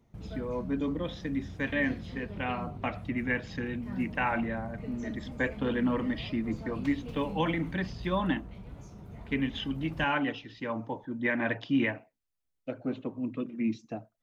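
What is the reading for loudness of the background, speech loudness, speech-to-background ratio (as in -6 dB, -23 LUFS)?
-43.0 LUFS, -32.5 LUFS, 10.5 dB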